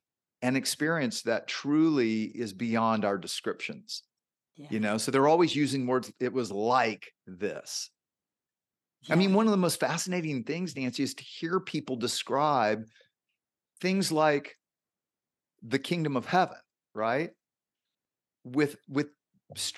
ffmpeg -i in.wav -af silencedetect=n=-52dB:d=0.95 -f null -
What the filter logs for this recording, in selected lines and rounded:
silence_start: 7.87
silence_end: 9.03 | silence_duration: 1.16
silence_start: 14.55
silence_end: 15.62 | silence_duration: 1.08
silence_start: 17.32
silence_end: 18.45 | silence_duration: 1.13